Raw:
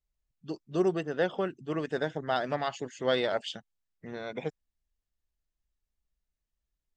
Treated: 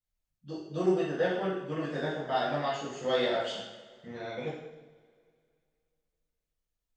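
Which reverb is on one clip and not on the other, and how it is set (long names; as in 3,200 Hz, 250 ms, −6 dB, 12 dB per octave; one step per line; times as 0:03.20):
coupled-rooms reverb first 0.83 s, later 2.5 s, from −19 dB, DRR −8.5 dB
level −9 dB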